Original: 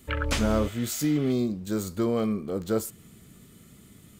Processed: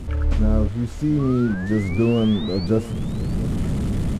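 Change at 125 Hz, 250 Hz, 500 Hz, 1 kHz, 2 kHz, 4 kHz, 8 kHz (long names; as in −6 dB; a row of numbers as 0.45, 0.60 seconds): +11.5 dB, +7.0 dB, +3.5 dB, +0.5 dB, +2.0 dB, +2.0 dB, can't be measured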